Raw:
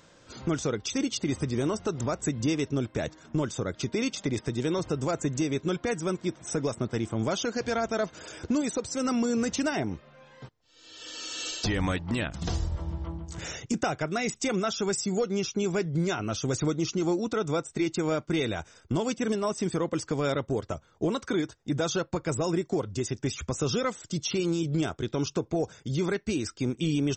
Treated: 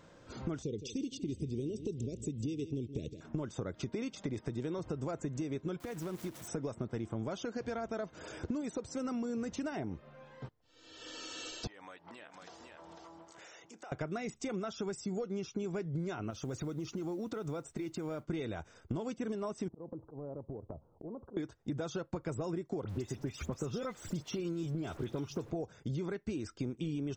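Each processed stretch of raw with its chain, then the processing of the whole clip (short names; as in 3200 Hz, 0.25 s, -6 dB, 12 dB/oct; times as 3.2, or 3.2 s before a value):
0.62–3.21 Chebyshev band-stop 440–2800 Hz, order 3 + echo 0.163 s -15 dB
5.8–6.48 switching spikes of -31 dBFS + companded quantiser 4-bit + compressor 4:1, threshold -33 dBFS
11.67–13.92 HPF 590 Hz + echo 0.499 s -11.5 dB + compressor 4:1, threshold -47 dBFS
16.3–18.25 compressor 5:1, threshold -33 dBFS + modulation noise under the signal 26 dB
19.68–21.37 auto swell 0.301 s + steep low-pass 940 Hz + compressor 10:1, threshold -39 dBFS
22.84–25.51 zero-crossing step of -41 dBFS + dispersion highs, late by 56 ms, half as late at 2600 Hz + three-band squash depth 40%
whole clip: compressor 6:1, threshold -34 dBFS; high shelf 2100 Hz -10 dB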